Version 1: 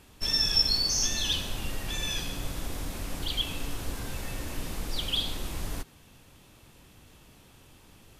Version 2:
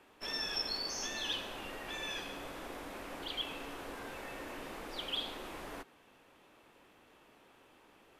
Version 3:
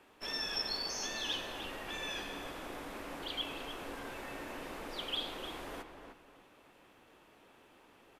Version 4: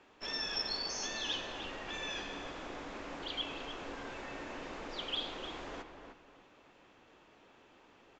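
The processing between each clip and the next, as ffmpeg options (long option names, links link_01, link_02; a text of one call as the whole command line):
ffmpeg -i in.wav -filter_complex "[0:a]acrossover=split=280 2700:gain=0.0891 1 0.2[link_01][link_02][link_03];[link_01][link_02][link_03]amix=inputs=3:normalize=0,volume=-1dB" out.wav
ffmpeg -i in.wav -filter_complex "[0:a]asplit=2[link_01][link_02];[link_02]adelay=303,lowpass=frequency=2600:poles=1,volume=-7dB,asplit=2[link_03][link_04];[link_04]adelay=303,lowpass=frequency=2600:poles=1,volume=0.31,asplit=2[link_05][link_06];[link_06]adelay=303,lowpass=frequency=2600:poles=1,volume=0.31,asplit=2[link_07][link_08];[link_08]adelay=303,lowpass=frequency=2600:poles=1,volume=0.31[link_09];[link_01][link_03][link_05][link_07][link_09]amix=inputs=5:normalize=0" out.wav
ffmpeg -i in.wav -af "aresample=16000,aresample=44100" out.wav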